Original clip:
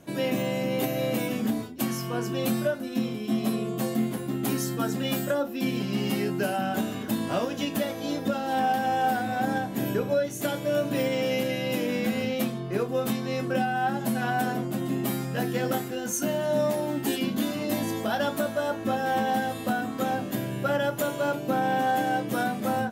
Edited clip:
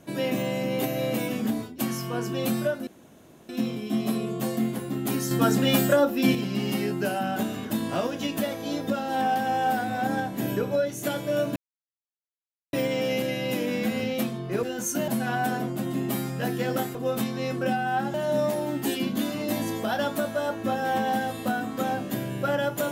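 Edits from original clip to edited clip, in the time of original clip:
2.87 insert room tone 0.62 s
4.69–5.73 gain +6.5 dB
10.94 insert silence 1.17 s
12.84–14.03 swap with 15.9–16.35

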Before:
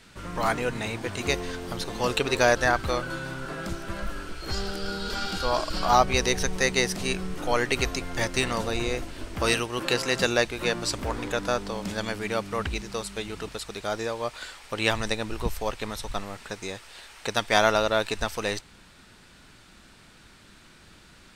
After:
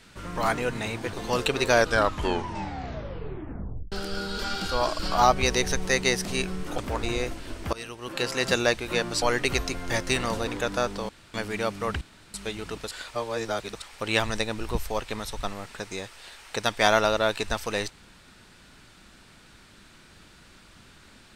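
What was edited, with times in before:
1.13–1.84 cut
2.42 tape stop 2.21 s
7.49–8.74 swap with 10.93–11.18
9.44–10.19 fade in linear, from -22 dB
11.8–12.05 room tone
12.72–13.05 room tone
13.62–14.53 reverse

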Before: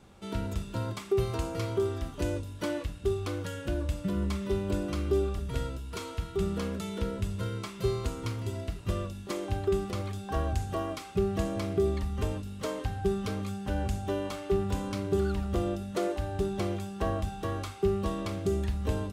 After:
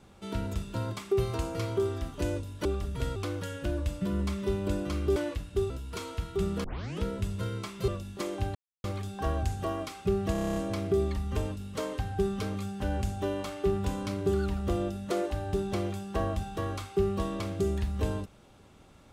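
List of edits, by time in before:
2.65–3.19 swap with 5.19–5.7
6.64 tape start 0.38 s
7.88–8.98 cut
9.65–9.94 mute
11.42 stutter 0.03 s, 9 plays

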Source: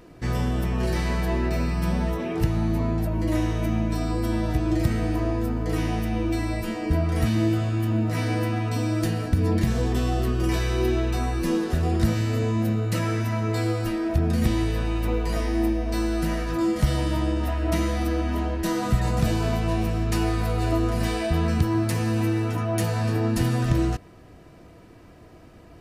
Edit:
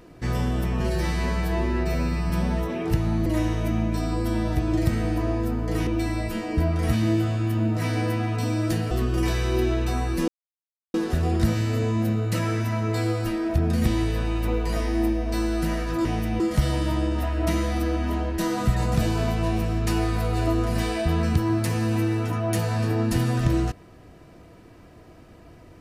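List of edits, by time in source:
0.8–1.8 stretch 1.5×
2.76–3.24 cut
5.85–6.2 move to 16.65
9.24–10.17 cut
11.54 insert silence 0.66 s

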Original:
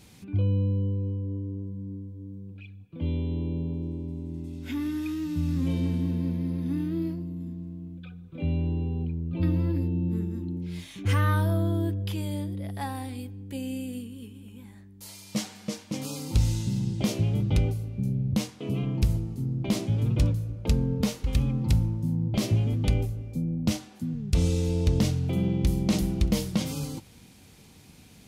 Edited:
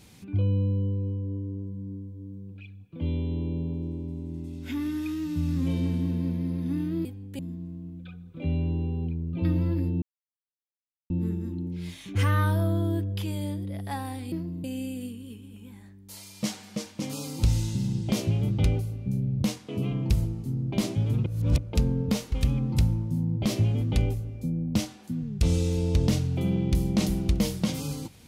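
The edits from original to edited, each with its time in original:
7.05–7.37 swap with 13.22–13.56
10 insert silence 1.08 s
20.18–20.5 reverse

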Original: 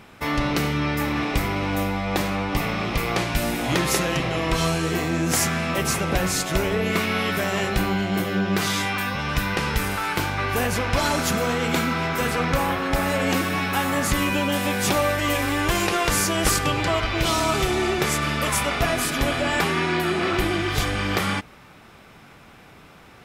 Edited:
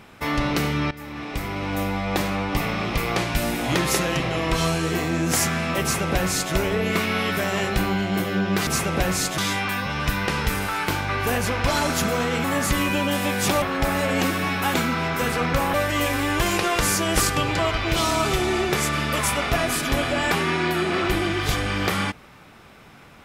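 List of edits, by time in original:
0.91–1.96 fade in, from -17.5 dB
5.82–6.53 copy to 8.67
11.73–12.73 swap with 13.85–15.03

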